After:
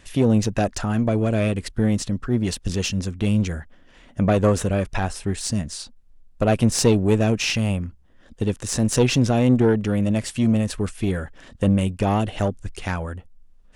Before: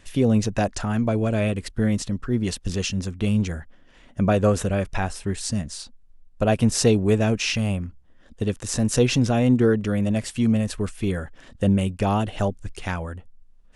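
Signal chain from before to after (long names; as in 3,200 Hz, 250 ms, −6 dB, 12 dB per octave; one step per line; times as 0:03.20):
one-sided soft clipper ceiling −16 dBFS
level +2.5 dB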